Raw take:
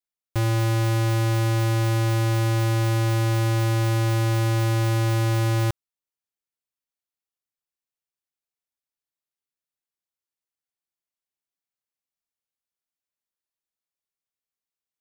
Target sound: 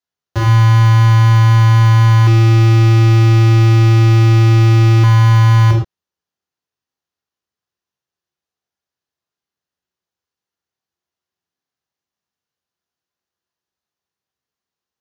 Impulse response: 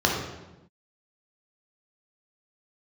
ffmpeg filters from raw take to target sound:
-filter_complex "[1:a]atrim=start_sample=2205,atrim=end_sample=6174[a];[0:a][a]afir=irnorm=-1:irlink=0,asettb=1/sr,asplit=3[b][c][d];[b]atrim=end=2.274[e];[c]atrim=start=2.27:end=5.04,asetpts=PTS-STARTPTS,afade=t=in:d=0.004:c=qsin,afade=t=out:st=2.766:d=0.004:c=qsin,acontrast=37[f];[d]atrim=start=5.036[g];[e][f]acrossfade=d=0.004:c1=hsin:c2=qsin[h];[h][g]acrossfade=d=0.004:c1=qsin:c2=hsin,volume=-6.5dB"

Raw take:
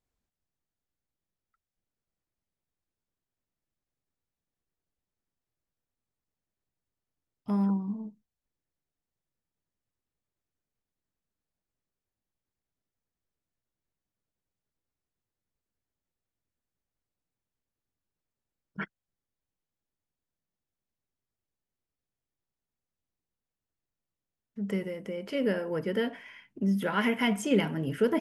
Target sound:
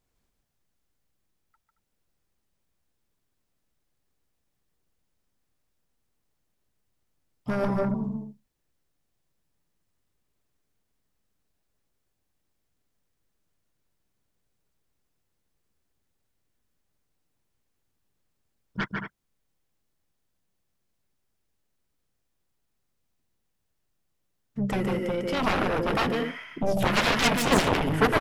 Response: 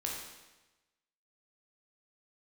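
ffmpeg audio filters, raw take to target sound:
-filter_complex "[0:a]aecho=1:1:148.7|224.5:0.631|0.282,aeval=exprs='0.224*(cos(1*acos(clip(val(0)/0.224,-1,1)))-cos(1*PI/2))+0.0224*(cos(4*acos(clip(val(0)/0.224,-1,1)))-cos(4*PI/2))+0.0251*(cos(6*acos(clip(val(0)/0.224,-1,1)))-cos(6*PI/2))+0.112*(cos(7*acos(clip(val(0)/0.224,-1,1)))-cos(7*PI/2))':c=same,asplit=2[a][b];[b]asetrate=29433,aresample=44100,atempo=1.49831,volume=-9dB[c];[a][c]amix=inputs=2:normalize=0"

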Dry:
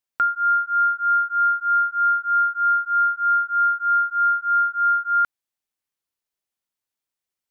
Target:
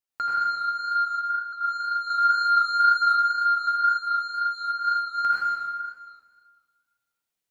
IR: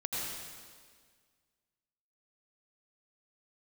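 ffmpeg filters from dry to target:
-filter_complex "[0:a]asettb=1/sr,asplit=3[a][b][c];[a]atrim=end=1.044[d];[b]atrim=start=1.04:end=1.53,asetpts=PTS-STARTPTS,afade=t=in:d=0.004:c=qsin,afade=t=out:st=0.486:d=0.004:c=qsin,acompressor=threshold=-29dB:ratio=6[e];[c]atrim=start=1.526[f];[d][e]acrossfade=d=0.004:c1=hsin:c2=qsin[g];[g][f]acrossfade=d=0.004:c1=qsin:c2=hsin,asoftclip=type=tanh:threshold=-17dB,asettb=1/sr,asplit=3[h][i][j];[h]atrim=end=2.104[k];[i]atrim=start=2.1:end=3.02,asetpts=PTS-STARTPTS,afade=t=in:d=0.004:c=qsin,afade=t=out:st=0.916:d=0.004:c=qsin,acontrast=54[l];[j]atrim=start=3.016[m];[k][l]acrossfade=d=0.004:c1=hsin:c2=qsin[n];[n][m]acrossfade=d=0.004:c1=qsin:c2=hsin,asettb=1/sr,asplit=3[o][p][q];[o]atrim=end=3.674[r];[p]atrim=start=3.67:end=4.7,asetpts=PTS-STARTPTS,afade=t=in:d=0.004:c=qsin,afade=t=out:st=1.026:d=0.004:c=qsin,highpass=1.3k[s];[q]atrim=start=4.696[t];[r][s]acrossfade=d=0.004:c1=hsin:c2=qsin[u];[u][t]acrossfade=d=0.004:c1=qsin:c2=hsin[v];[1:a]atrim=start_sample=2205[w];[v][w]afir=irnorm=-1:irlink=0,flanger=delay=9.9:depth=3.4:regen=-62:speed=2:shape=sinusoidal,volume=2dB"

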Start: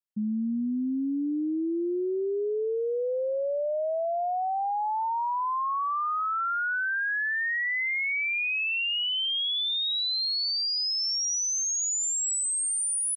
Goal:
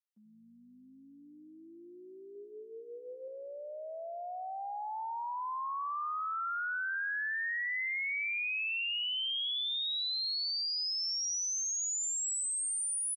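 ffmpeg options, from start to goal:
-filter_complex "[0:a]highpass=950,asettb=1/sr,asplit=3[a][b][c];[a]atrim=end=2.314[d];[b]atrim=start=2.31:end=3.28,asetpts=PTS-STARTPTS,afade=t=in:d=0.004:c=qsin,afade=t=out:st=0.966:d=0.004:c=qsin,asplit=2[e][f];[f]adelay=42,volume=-7dB[g];[e][g]amix=inputs=2:normalize=0,atrim=end_sample=42777[h];[c]atrim=start=3.276[i];[d][h]acrossfade=d=0.004:c1=hsin:c2=qsin[j];[j][i]acrossfade=d=0.004:c1=qsin:c2=hsin,asplit=5[k][l][m][n][o];[l]adelay=82,afreqshift=-47,volume=-14dB[p];[m]adelay=164,afreqshift=-94,volume=-21.5dB[q];[n]adelay=246,afreqshift=-141,volume=-29.1dB[r];[o]adelay=328,afreqshift=-188,volume=-36.6dB[s];[k][p][q][r][s]amix=inputs=5:normalize=0,volume=-6.5dB"

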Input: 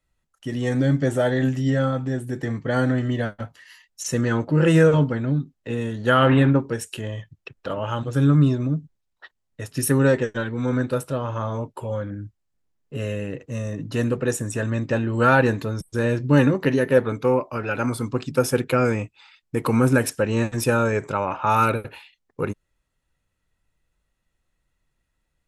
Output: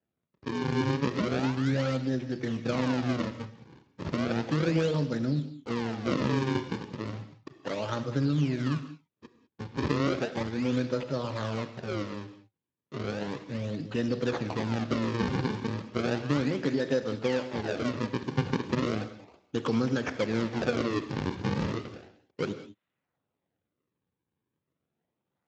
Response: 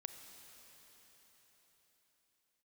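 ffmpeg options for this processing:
-filter_complex "[0:a]highpass=160,equalizer=f=880:t=o:w=1.7:g=-4.5,acompressor=threshold=-22dB:ratio=6,acrusher=samples=38:mix=1:aa=0.000001:lfo=1:lforange=60.8:lforate=0.34[a];[1:a]atrim=start_sample=2205,afade=t=out:st=0.26:d=0.01,atrim=end_sample=11907[b];[a][b]afir=irnorm=-1:irlink=0,volume=2.5dB" -ar 16000 -c:a libspeex -b:a 21k

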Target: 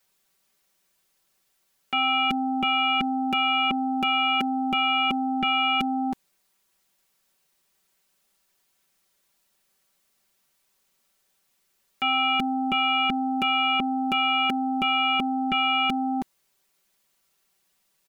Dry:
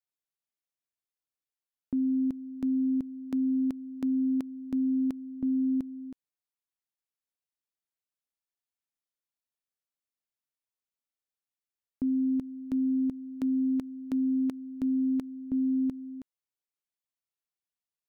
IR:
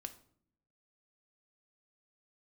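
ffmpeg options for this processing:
-af "aeval=exprs='0.0668*sin(PI/2*7.08*val(0)/0.0668)':c=same,aecho=1:1:5.2:0.79"

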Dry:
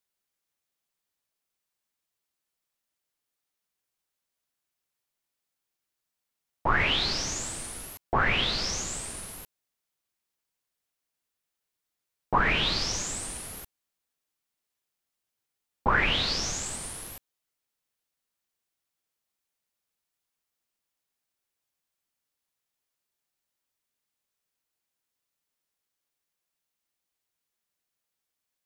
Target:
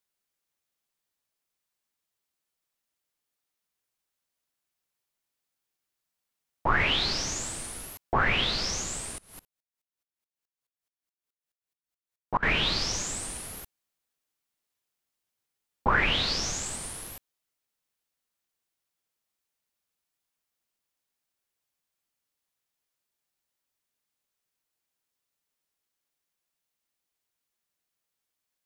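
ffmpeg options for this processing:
-filter_complex "[0:a]asettb=1/sr,asplit=3[a][b][c];[a]atrim=end=9.184[d];[b]atrim=start=9.18:end=12.43,asetpts=PTS-STARTPTS,afade=t=in:d=0.004:c=qsin,afade=t=out:st=3.246:d=0.004:c=qsin,aeval=exprs='val(0)*pow(10,-27*if(lt(mod(-4.7*n/s,1),2*abs(-4.7)/1000),1-mod(-4.7*n/s,1)/(2*abs(-4.7)/1000),(mod(-4.7*n/s,1)-2*abs(-4.7)/1000)/(1-2*abs(-4.7)/1000))/20)':c=same[e];[c]atrim=start=12.426[f];[d][e]acrossfade=d=0.004:c1=hsin:c2=qsin[g];[g][f]acrossfade=d=0.004:c1=qsin:c2=hsin"

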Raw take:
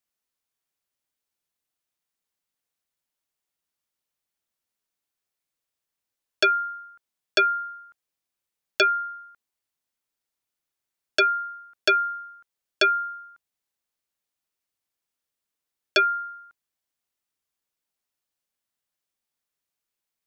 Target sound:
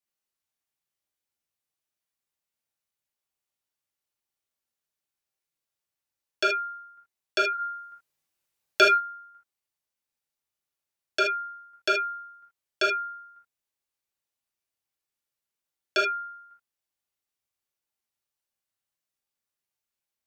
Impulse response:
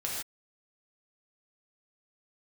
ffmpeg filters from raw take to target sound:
-filter_complex "[0:a]asettb=1/sr,asplit=3[a][b][c];[a]atrim=end=7.534[d];[b]atrim=start=7.53:end=8.92,asetpts=PTS-STARTPTS,afade=t=in:d=0.004:c=qsin,afade=t=out:st=1.386:d=0.004:c=qsin,acontrast=72[e];[c]atrim=start=8.916[f];[d][e]acrossfade=d=0.004:c1=hsin:c2=qsin[g];[g][f]acrossfade=d=0.004:c1=qsin:c2=hsin[h];[1:a]atrim=start_sample=2205,afade=t=out:st=0.14:d=0.01,atrim=end_sample=6615,asetrate=48510,aresample=44100[i];[h][i]afir=irnorm=-1:irlink=0,volume=-4.5dB"

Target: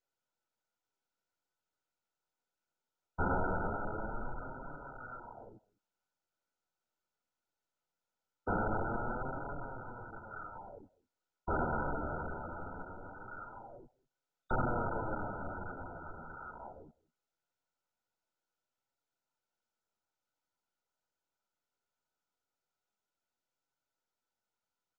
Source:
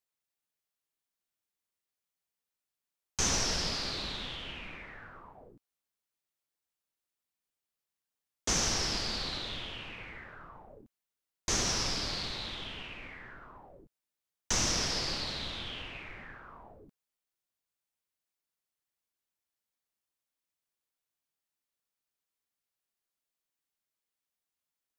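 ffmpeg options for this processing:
-filter_complex "[0:a]tiltshelf=f=970:g=-5.5,asplit=2[a][b];[b]adelay=198.3,volume=-25dB,highshelf=f=4k:g=-4.46[c];[a][c]amix=inputs=2:normalize=0,flanger=delay=7:depth=6.7:regen=20:speed=0.21:shape=triangular,asettb=1/sr,asplit=3[d][e][f];[d]atrim=end=3.734[g];[e]atrim=start=3.73:end=4.41,asetpts=PTS-STARTPTS,afade=t=in:d=0.004:c=qsin,afade=t=out:st=0.676:d=0.004:c=qsin,asubboost=boost=10.5:cutoff=77[h];[f]atrim=start=4.406[i];[g][h]acrossfade=d=0.004:c1=hsin:c2=qsin[j];[j][i]acrossfade=d=0.004:c1=qsin:c2=hsin,volume=9dB" -ar 16000 -c:a mp2 -b:a 8k

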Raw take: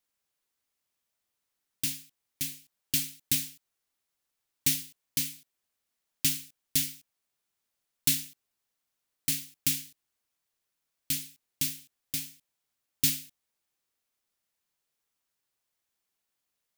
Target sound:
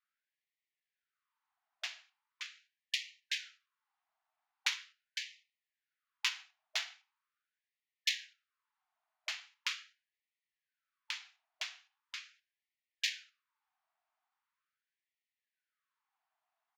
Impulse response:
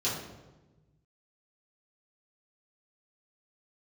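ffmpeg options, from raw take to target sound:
-filter_complex "[0:a]aresample=16000,aresample=44100,adynamicsmooth=sensitivity=1:basefreq=980,asplit=2[a][b];[1:a]atrim=start_sample=2205,afade=t=out:st=0.21:d=0.01,atrim=end_sample=9702[c];[b][c]afir=irnorm=-1:irlink=0,volume=-17.5dB[d];[a][d]amix=inputs=2:normalize=0,afftfilt=real='re*gte(b*sr/1024,610*pow(1800/610,0.5+0.5*sin(2*PI*0.41*pts/sr)))':imag='im*gte(b*sr/1024,610*pow(1800/610,0.5+0.5*sin(2*PI*0.41*pts/sr)))':win_size=1024:overlap=0.75,volume=14dB"

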